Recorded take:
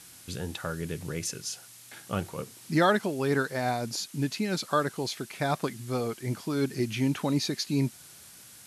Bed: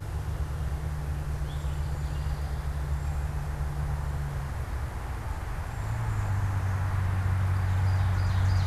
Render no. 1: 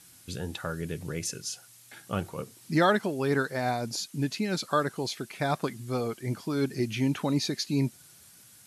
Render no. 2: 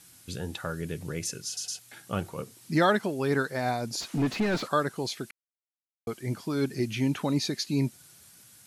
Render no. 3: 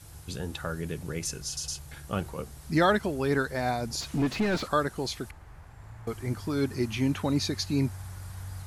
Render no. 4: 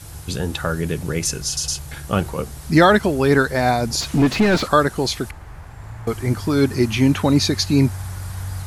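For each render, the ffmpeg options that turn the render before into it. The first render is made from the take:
ffmpeg -i in.wav -af "afftdn=noise_reduction=6:noise_floor=-51" out.wav
ffmpeg -i in.wav -filter_complex "[0:a]asplit=3[link_01][link_02][link_03];[link_01]afade=type=out:start_time=4:duration=0.02[link_04];[link_02]asplit=2[link_05][link_06];[link_06]highpass=frequency=720:poles=1,volume=28dB,asoftclip=type=tanh:threshold=-17.5dB[link_07];[link_05][link_07]amix=inputs=2:normalize=0,lowpass=frequency=1000:poles=1,volume=-6dB,afade=type=in:start_time=4:duration=0.02,afade=type=out:start_time=4.67:duration=0.02[link_08];[link_03]afade=type=in:start_time=4.67:duration=0.02[link_09];[link_04][link_08][link_09]amix=inputs=3:normalize=0,asplit=6[link_10][link_11][link_12][link_13][link_14][link_15];[link_10]atrim=end=1.572[link_16];[link_11]atrim=start=1.458:end=1.572[link_17];[link_12]atrim=start=1.458:end=1.572[link_18];[link_13]atrim=start=1.788:end=5.31,asetpts=PTS-STARTPTS,afade=type=out:start_time=3.518:duration=0.004:curve=hsin[link_19];[link_14]atrim=start=5.31:end=6.07,asetpts=PTS-STARTPTS,volume=0[link_20];[link_15]atrim=start=6.07,asetpts=PTS-STARTPTS,afade=type=in:duration=0.004:curve=hsin[link_21];[link_16][link_17]acrossfade=duration=0.004:curve1=hsin:curve2=hsin[link_22];[link_22][link_18]acrossfade=duration=0.004:curve1=hsin:curve2=hsin[link_23];[link_19][link_20][link_21]concat=n=3:v=0:a=1[link_24];[link_23][link_24]acrossfade=duration=0.004:curve1=hsin:curve2=hsin" out.wav
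ffmpeg -i in.wav -i bed.wav -filter_complex "[1:a]volume=-15dB[link_01];[0:a][link_01]amix=inputs=2:normalize=0" out.wav
ffmpeg -i in.wav -af "volume=11dB,alimiter=limit=-2dB:level=0:latency=1" out.wav

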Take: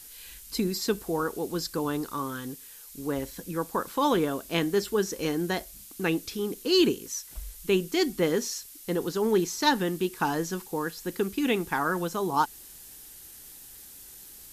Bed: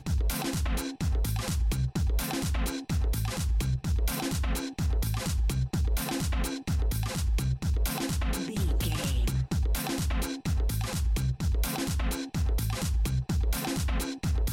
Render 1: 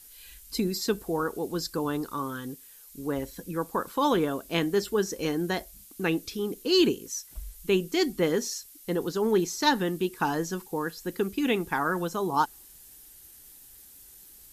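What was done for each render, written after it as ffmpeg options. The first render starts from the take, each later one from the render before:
ffmpeg -i in.wav -af "afftdn=noise_reduction=6:noise_floor=-48" out.wav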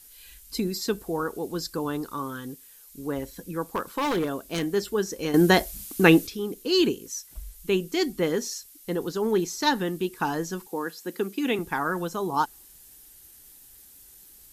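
ffmpeg -i in.wav -filter_complex "[0:a]asettb=1/sr,asplit=3[link_01][link_02][link_03];[link_01]atrim=end=3.614[link_04];[link_02]atrim=start=3.61:end=4.7,asetpts=PTS-STARTPTS,afade=type=in:duration=0.004:curve=qsin,afade=type=out:start_time=1.086:duration=0.004:curve=qsin,aeval=exprs='0.1*(abs(mod(val(0)/0.1+3,4)-2)-1)':channel_layout=same[link_05];[link_03]atrim=start=4.696[link_06];[link_04][link_05]acrossfade=duration=0.004:curve1=hsin:curve2=qsin[link_07];[link_07][link_06]acrossfade=duration=0.004:curve1=qsin:curve2=hsin,asettb=1/sr,asplit=3[link_08][link_09][link_10];[link_08]atrim=end=10.674[link_11];[link_09]atrim=start=10.67:end=11.59,asetpts=PTS-STARTPTS,afade=type=in:duration=0.004:curve=qsin,afade=type=out:start_time=0.916:duration=0.004:curve=qsin,highpass=frequency=190:width=0.5412,highpass=frequency=190:width=1.3066[link_12];[link_10]atrim=start=11.586[link_13];[link_11][link_12]acrossfade=duration=0.004:curve1=hsin:curve2=qsin[link_14];[link_14][link_13]acrossfade=duration=0.004:curve1=qsin:curve2=hsin,asplit=3[link_15][link_16][link_17];[link_15]atrim=end=5.342[link_18];[link_16]atrim=start=5.338:end=6.272,asetpts=PTS-STARTPTS,volume=11dB[link_19];[link_17]atrim=start=6.268[link_20];[link_18][link_19]acrossfade=duration=0.004:curve1=hsin:curve2=hsin[link_21];[link_21][link_20]acrossfade=duration=0.004:curve1=hsin:curve2=hsin" out.wav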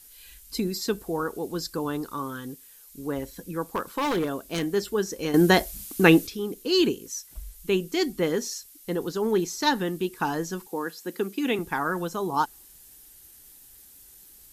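ffmpeg -i in.wav -af anull out.wav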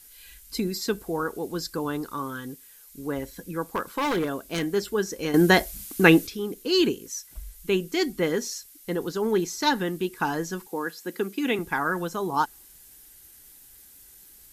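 ffmpeg -i in.wav -af "equalizer=frequency=1800:width=4:gain=9.5,bandreject=frequency=1800:width=7.3" out.wav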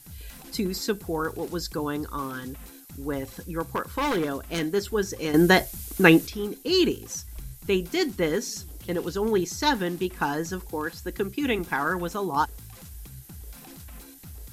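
ffmpeg -i in.wav -i bed.wav -filter_complex "[1:a]volume=-15.5dB[link_01];[0:a][link_01]amix=inputs=2:normalize=0" out.wav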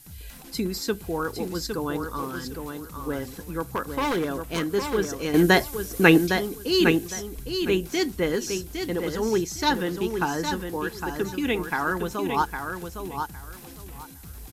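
ffmpeg -i in.wav -af "aecho=1:1:809|1618|2427:0.473|0.0946|0.0189" out.wav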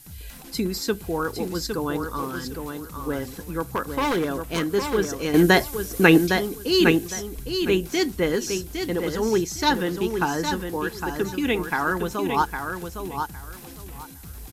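ffmpeg -i in.wav -af "volume=2dB,alimiter=limit=-3dB:level=0:latency=1" out.wav

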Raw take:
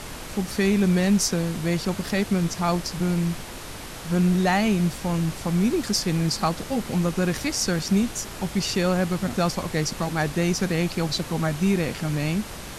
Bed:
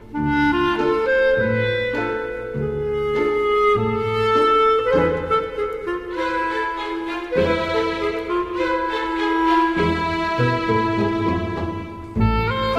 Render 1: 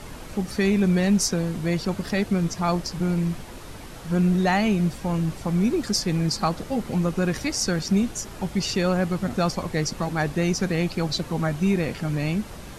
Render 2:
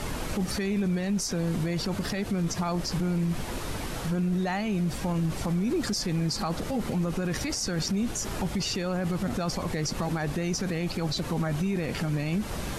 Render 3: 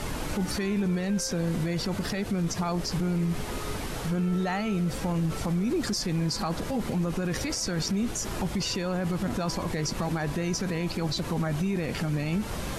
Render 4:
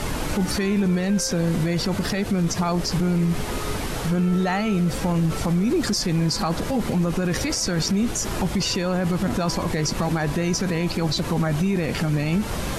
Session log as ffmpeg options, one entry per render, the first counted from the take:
ffmpeg -i in.wav -af "afftdn=noise_reduction=7:noise_floor=-37" out.wav
ffmpeg -i in.wav -filter_complex "[0:a]asplit=2[link_01][link_02];[link_02]acompressor=threshold=-30dB:ratio=6,volume=0.5dB[link_03];[link_01][link_03]amix=inputs=2:normalize=0,alimiter=limit=-21dB:level=0:latency=1:release=42" out.wav
ffmpeg -i in.wav -i bed.wav -filter_complex "[1:a]volume=-26.5dB[link_01];[0:a][link_01]amix=inputs=2:normalize=0" out.wav
ffmpeg -i in.wav -af "volume=6dB" out.wav

